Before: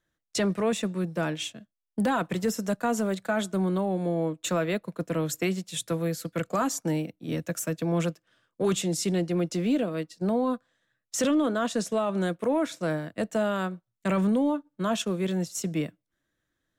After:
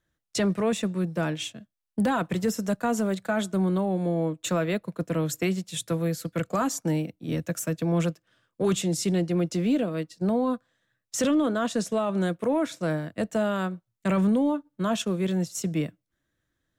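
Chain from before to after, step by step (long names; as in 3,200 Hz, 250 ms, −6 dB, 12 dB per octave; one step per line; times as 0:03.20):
parametric band 74 Hz +6 dB 2.2 octaves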